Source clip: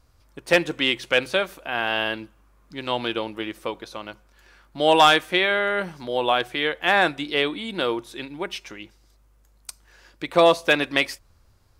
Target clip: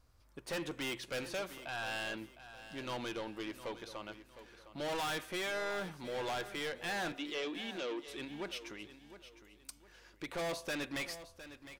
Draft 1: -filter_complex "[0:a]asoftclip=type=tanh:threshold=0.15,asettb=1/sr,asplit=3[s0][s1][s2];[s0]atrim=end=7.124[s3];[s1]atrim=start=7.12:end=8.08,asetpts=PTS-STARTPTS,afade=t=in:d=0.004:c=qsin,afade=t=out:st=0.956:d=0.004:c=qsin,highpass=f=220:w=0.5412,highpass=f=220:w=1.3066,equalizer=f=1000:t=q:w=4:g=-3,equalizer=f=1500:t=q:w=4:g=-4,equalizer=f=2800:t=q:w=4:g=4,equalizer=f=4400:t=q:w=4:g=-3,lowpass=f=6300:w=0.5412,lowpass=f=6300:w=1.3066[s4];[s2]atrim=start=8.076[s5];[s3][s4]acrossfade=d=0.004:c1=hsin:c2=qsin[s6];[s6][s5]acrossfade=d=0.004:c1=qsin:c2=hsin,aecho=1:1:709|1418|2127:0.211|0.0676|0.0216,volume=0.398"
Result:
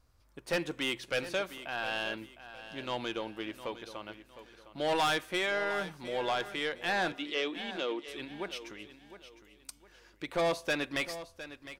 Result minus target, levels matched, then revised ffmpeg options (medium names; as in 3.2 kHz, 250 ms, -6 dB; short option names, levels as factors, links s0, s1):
saturation: distortion -6 dB
-filter_complex "[0:a]asoftclip=type=tanh:threshold=0.0447,asettb=1/sr,asplit=3[s0][s1][s2];[s0]atrim=end=7.124[s3];[s1]atrim=start=7.12:end=8.08,asetpts=PTS-STARTPTS,afade=t=in:d=0.004:c=qsin,afade=t=out:st=0.956:d=0.004:c=qsin,highpass=f=220:w=0.5412,highpass=f=220:w=1.3066,equalizer=f=1000:t=q:w=4:g=-3,equalizer=f=1500:t=q:w=4:g=-4,equalizer=f=2800:t=q:w=4:g=4,equalizer=f=4400:t=q:w=4:g=-3,lowpass=f=6300:w=0.5412,lowpass=f=6300:w=1.3066[s4];[s2]atrim=start=8.076[s5];[s3][s4]acrossfade=d=0.004:c1=hsin:c2=qsin[s6];[s6][s5]acrossfade=d=0.004:c1=qsin:c2=hsin,aecho=1:1:709|1418|2127:0.211|0.0676|0.0216,volume=0.398"